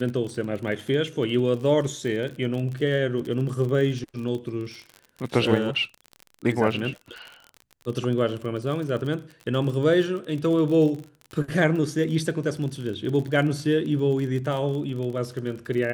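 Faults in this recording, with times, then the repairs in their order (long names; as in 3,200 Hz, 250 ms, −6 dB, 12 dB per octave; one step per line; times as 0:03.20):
surface crackle 39 per second −31 dBFS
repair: click removal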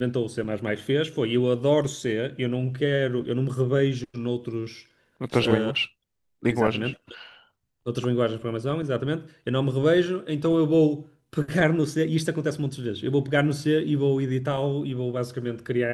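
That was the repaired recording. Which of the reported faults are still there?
none of them is left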